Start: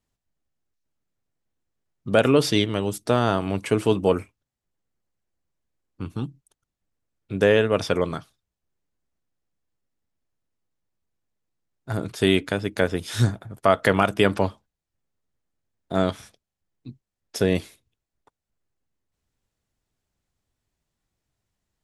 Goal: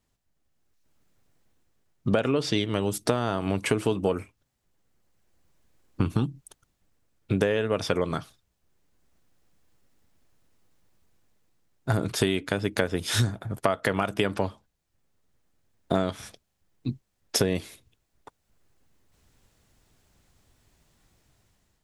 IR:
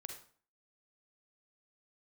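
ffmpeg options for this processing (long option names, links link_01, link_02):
-filter_complex "[0:a]dynaudnorm=framelen=340:gausssize=5:maxgain=11dB,asettb=1/sr,asplit=3[link_01][link_02][link_03];[link_01]atrim=end=2.124[link_04];[link_02]atrim=start=2.12:end=2.58,asetpts=PTS-STARTPTS,afade=type=in:duration=0.004:curve=qsin,afade=type=out:start_time=0.456:duration=0.004:curve=qsin,lowpass=7200[link_05];[link_03]atrim=start=2.576[link_06];[link_04][link_05]acrossfade=duration=0.004:curve1=hsin:curve2=qsin[link_07];[link_07][link_06]acrossfade=duration=0.004:curve1=qsin:curve2=hsin,acompressor=threshold=-25dB:ratio=12,volume=4.5dB"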